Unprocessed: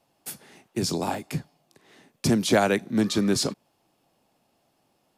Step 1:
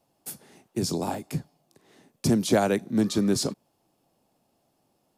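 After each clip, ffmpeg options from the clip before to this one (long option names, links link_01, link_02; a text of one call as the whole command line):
ffmpeg -i in.wav -af "equalizer=frequency=2200:width_type=o:width=2.3:gain=-6.5" out.wav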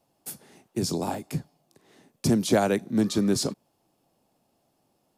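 ffmpeg -i in.wav -af anull out.wav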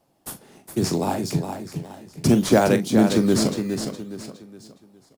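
ffmpeg -i in.wav -filter_complex "[0:a]aecho=1:1:414|828|1242|1656:0.447|0.161|0.0579|0.0208,asplit=2[link_01][link_02];[link_02]acrusher=samples=11:mix=1:aa=0.000001:lfo=1:lforange=17.6:lforate=0.61,volume=-6dB[link_03];[link_01][link_03]amix=inputs=2:normalize=0,asplit=2[link_04][link_05];[link_05]adelay=42,volume=-11.5dB[link_06];[link_04][link_06]amix=inputs=2:normalize=0,volume=1.5dB" out.wav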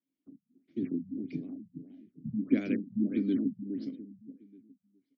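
ffmpeg -i in.wav -filter_complex "[0:a]afftdn=noise_reduction=12:noise_floor=-37,asplit=3[link_01][link_02][link_03];[link_01]bandpass=frequency=270:width_type=q:width=8,volume=0dB[link_04];[link_02]bandpass=frequency=2290:width_type=q:width=8,volume=-6dB[link_05];[link_03]bandpass=frequency=3010:width_type=q:width=8,volume=-9dB[link_06];[link_04][link_05][link_06]amix=inputs=3:normalize=0,afftfilt=real='re*lt(b*sr/1024,200*pow(7000/200,0.5+0.5*sin(2*PI*1.6*pts/sr)))':imag='im*lt(b*sr/1024,200*pow(7000/200,0.5+0.5*sin(2*PI*1.6*pts/sr)))':win_size=1024:overlap=0.75" out.wav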